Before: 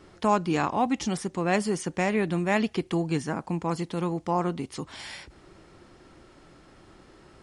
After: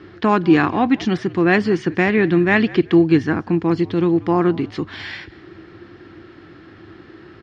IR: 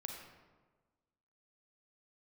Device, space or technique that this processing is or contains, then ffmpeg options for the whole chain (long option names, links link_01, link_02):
frequency-shifting delay pedal into a guitar cabinet: -filter_complex "[0:a]asplit=3[link_01][link_02][link_03];[link_02]adelay=190,afreqshift=-65,volume=-21dB[link_04];[link_03]adelay=380,afreqshift=-130,volume=-30.6dB[link_05];[link_01][link_04][link_05]amix=inputs=3:normalize=0,highpass=79,equalizer=frequency=97:width_type=q:width=4:gain=9,equalizer=frequency=330:width_type=q:width=4:gain=9,equalizer=frequency=580:width_type=q:width=4:gain=-7,equalizer=frequency=900:width_type=q:width=4:gain=-5,equalizer=frequency=1700:width_type=q:width=4:gain=7,lowpass=frequency=4300:width=0.5412,lowpass=frequency=4300:width=1.3066,asettb=1/sr,asplit=3[link_06][link_07][link_08];[link_06]atrim=end=3.554[link_09];[link_07]atrim=start=3.55:end=4.14,asetpts=PTS-STARTPTS,afade=type=in:duration=0.004:curve=qsin,afade=type=out:start_time=0.586:duration=0.004:curve=qsin,equalizer=frequency=1400:width_type=o:width=1.3:gain=-4[link_10];[link_08]atrim=start=4.136[link_11];[link_09][link_10]acrossfade=duration=0.004:curve1=hsin:curve2=qsin[link_12];[link_12][link_11]acrossfade=duration=0.004:curve1=qsin:curve2=hsin,volume=8dB"